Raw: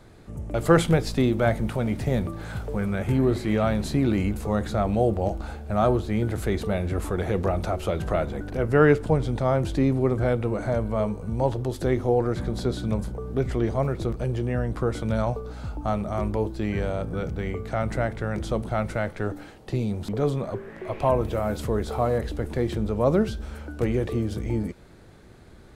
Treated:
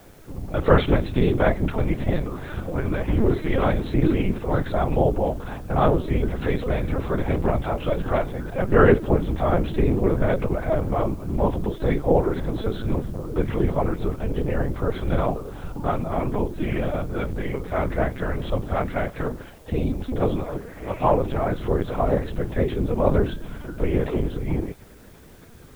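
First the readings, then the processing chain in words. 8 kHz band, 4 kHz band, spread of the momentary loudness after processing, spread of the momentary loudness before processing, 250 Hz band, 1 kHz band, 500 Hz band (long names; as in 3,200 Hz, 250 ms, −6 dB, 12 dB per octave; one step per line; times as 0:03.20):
can't be measured, 0.0 dB, 8 LU, 8 LU, +1.0 dB, +3.0 dB, +1.5 dB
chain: random phases in short frames
linear-prediction vocoder at 8 kHz pitch kept
bit-depth reduction 10 bits, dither triangular
level +2.5 dB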